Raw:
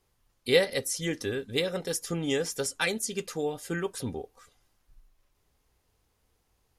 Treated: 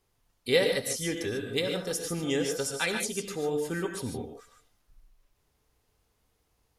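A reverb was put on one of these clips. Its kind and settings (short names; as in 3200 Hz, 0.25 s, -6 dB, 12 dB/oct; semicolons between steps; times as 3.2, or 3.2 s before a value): non-linear reverb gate 0.17 s rising, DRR 4 dB; gain -1.5 dB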